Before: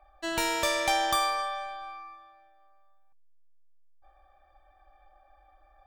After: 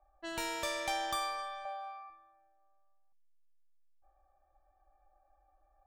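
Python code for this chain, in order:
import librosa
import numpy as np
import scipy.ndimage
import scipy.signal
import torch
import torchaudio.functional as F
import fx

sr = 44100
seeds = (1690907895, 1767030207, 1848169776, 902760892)

y = fx.highpass_res(x, sr, hz=630.0, q=4.3, at=(1.65, 2.1))
y = fx.env_lowpass(y, sr, base_hz=1000.0, full_db=-29.0)
y = y * librosa.db_to_amplitude(-9.0)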